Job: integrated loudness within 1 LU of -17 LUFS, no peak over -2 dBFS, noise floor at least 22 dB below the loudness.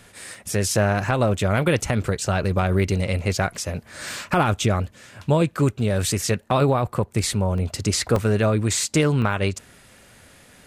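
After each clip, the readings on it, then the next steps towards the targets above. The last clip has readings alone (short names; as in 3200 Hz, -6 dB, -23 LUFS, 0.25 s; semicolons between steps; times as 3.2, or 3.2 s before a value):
dropouts 4; longest dropout 2.3 ms; loudness -22.0 LUFS; peak -8.5 dBFS; loudness target -17.0 LUFS
-> interpolate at 0.35/7.58/8.16/9.22, 2.3 ms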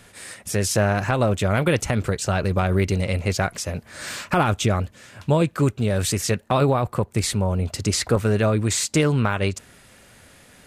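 dropouts 0; loudness -22.0 LUFS; peak -8.5 dBFS; loudness target -17.0 LUFS
-> gain +5 dB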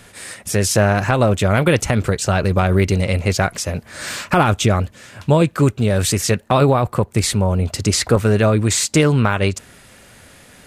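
loudness -17.0 LUFS; peak -3.5 dBFS; noise floor -47 dBFS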